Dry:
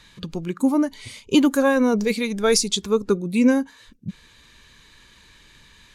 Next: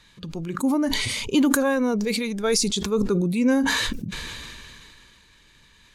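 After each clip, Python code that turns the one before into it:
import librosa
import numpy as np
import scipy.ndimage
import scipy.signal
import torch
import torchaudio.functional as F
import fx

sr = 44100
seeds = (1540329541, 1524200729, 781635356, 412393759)

y = fx.sustainer(x, sr, db_per_s=22.0)
y = y * librosa.db_to_amplitude(-4.5)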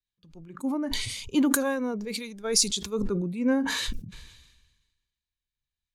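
y = fx.band_widen(x, sr, depth_pct=100)
y = y * librosa.db_to_amplitude(-7.0)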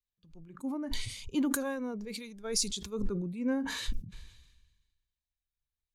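y = fx.low_shelf(x, sr, hz=110.0, db=9.0)
y = y * librosa.db_to_amplitude(-8.0)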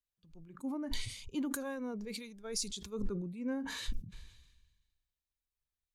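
y = fx.rider(x, sr, range_db=3, speed_s=0.5)
y = y * librosa.db_to_amplitude(-4.5)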